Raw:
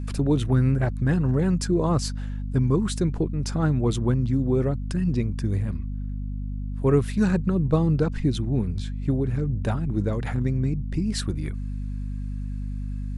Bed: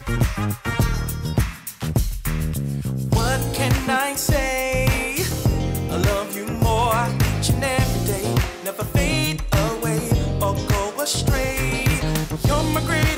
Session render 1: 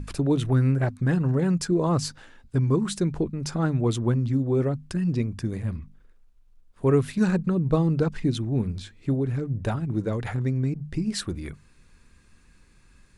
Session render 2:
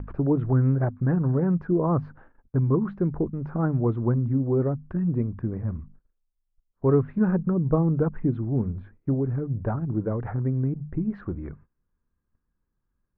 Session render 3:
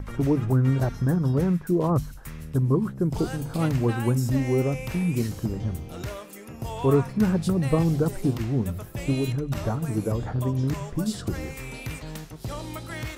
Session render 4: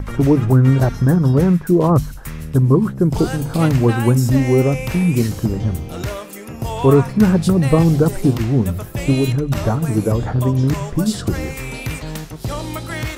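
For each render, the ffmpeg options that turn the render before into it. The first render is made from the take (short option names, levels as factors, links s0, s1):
-af "bandreject=f=50:t=h:w=6,bandreject=f=100:t=h:w=6,bandreject=f=150:t=h:w=6,bandreject=f=200:t=h:w=6,bandreject=f=250:t=h:w=6"
-af "lowpass=f=1400:w=0.5412,lowpass=f=1400:w=1.3066,agate=range=0.0891:threshold=0.00398:ratio=16:detection=peak"
-filter_complex "[1:a]volume=0.178[s0];[0:a][s0]amix=inputs=2:normalize=0"
-af "volume=2.82,alimiter=limit=0.794:level=0:latency=1"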